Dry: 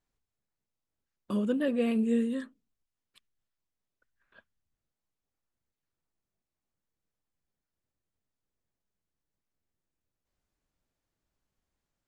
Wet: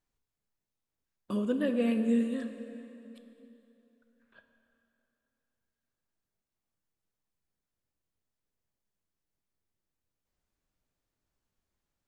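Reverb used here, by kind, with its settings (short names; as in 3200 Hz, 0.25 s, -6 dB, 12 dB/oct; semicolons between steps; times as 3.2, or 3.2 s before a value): plate-style reverb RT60 3.2 s, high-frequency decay 0.8×, DRR 7 dB; gain -1.5 dB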